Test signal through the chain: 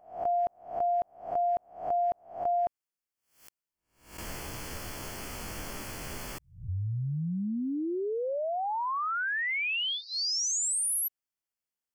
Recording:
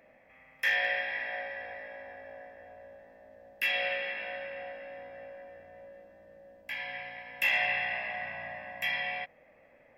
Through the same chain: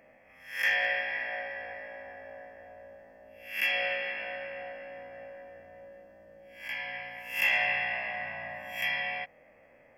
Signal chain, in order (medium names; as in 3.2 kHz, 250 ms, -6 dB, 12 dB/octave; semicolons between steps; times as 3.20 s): reverse spectral sustain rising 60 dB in 0.46 s; Butterworth band-stop 3.8 kHz, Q 4.6